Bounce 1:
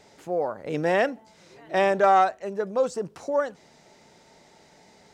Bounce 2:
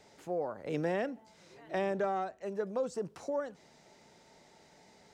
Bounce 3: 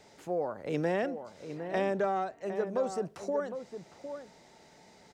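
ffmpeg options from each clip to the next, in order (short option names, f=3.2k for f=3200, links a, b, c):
-filter_complex "[0:a]acrossover=split=400[a][b];[b]acompressor=threshold=-29dB:ratio=6[c];[a][c]amix=inputs=2:normalize=0,volume=-5.5dB"
-filter_complex "[0:a]asplit=2[a][b];[b]adelay=758,volume=-9dB,highshelf=f=4k:g=-17.1[c];[a][c]amix=inputs=2:normalize=0,volume=2.5dB"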